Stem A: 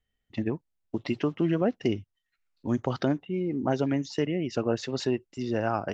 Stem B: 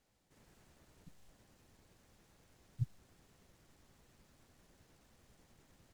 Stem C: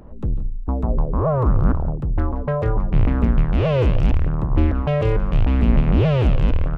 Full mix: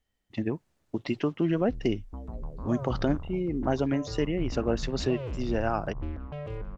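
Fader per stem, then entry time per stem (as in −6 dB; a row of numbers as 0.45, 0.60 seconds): −0.5, −9.0, −18.0 decibels; 0.00, 0.00, 1.45 seconds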